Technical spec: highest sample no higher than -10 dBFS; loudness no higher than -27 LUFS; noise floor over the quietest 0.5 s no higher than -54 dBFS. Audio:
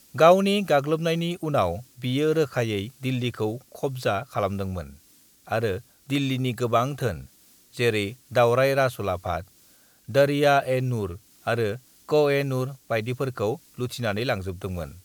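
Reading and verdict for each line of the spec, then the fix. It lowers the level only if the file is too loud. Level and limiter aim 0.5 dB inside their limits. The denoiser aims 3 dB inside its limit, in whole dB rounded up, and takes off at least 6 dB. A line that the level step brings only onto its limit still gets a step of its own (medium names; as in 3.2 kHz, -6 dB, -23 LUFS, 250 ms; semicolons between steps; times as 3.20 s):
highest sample -3.5 dBFS: fail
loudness -25.0 LUFS: fail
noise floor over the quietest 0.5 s -57 dBFS: pass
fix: trim -2.5 dB; peak limiter -10.5 dBFS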